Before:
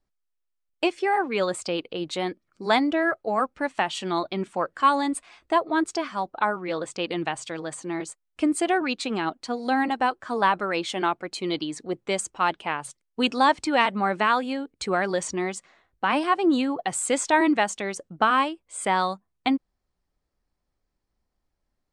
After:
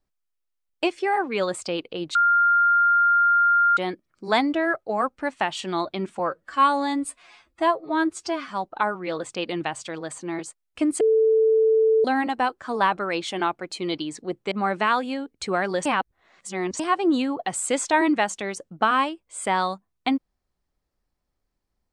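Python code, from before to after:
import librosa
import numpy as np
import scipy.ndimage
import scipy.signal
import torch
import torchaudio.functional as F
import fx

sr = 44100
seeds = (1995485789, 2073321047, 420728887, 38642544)

y = fx.edit(x, sr, fx.insert_tone(at_s=2.15, length_s=1.62, hz=1400.0, db=-15.0),
    fx.stretch_span(start_s=4.57, length_s=1.53, factor=1.5),
    fx.bleep(start_s=8.62, length_s=1.04, hz=442.0, db=-15.0),
    fx.cut(start_s=12.13, length_s=1.78),
    fx.reverse_span(start_s=15.25, length_s=0.94), tone=tone)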